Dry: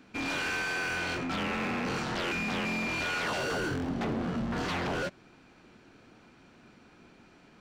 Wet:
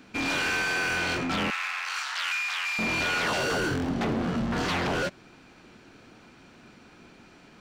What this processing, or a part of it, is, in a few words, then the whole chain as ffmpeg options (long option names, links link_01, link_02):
exciter from parts: -filter_complex "[0:a]asettb=1/sr,asplit=3[link_01][link_02][link_03];[link_01]atrim=end=1.504[link_04];[link_02]atrim=start=1.5:end=2.79,asetpts=PTS-STARTPTS,afade=type=in:duration=0.004:curve=qsin,afade=type=out:start_time=1.286:duration=0.004:curve=qsin,highpass=frequency=1100:width=0.5412,highpass=frequency=1100:width=1.3066[link_05];[link_03]atrim=start=2.786[link_06];[link_04][link_05]acrossfade=duration=0.004:curve1=hsin:curve2=qsin[link_07];[link_07][link_06]acrossfade=duration=0.004:curve1=qsin:curve2=hsin,asplit=2[link_08][link_09];[link_09]highpass=frequency=3100:poles=1,asoftclip=type=tanh:threshold=-36dB,volume=-6dB[link_10];[link_08][link_10]amix=inputs=2:normalize=0,volume=4dB"